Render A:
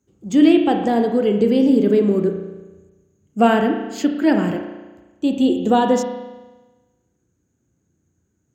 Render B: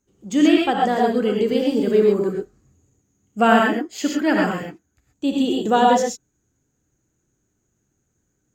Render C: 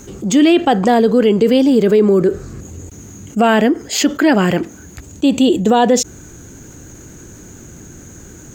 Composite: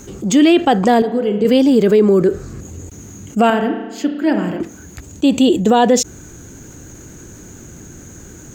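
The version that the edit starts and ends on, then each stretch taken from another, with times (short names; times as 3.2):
C
1.02–1.45 from A
3.5–4.6 from A
not used: B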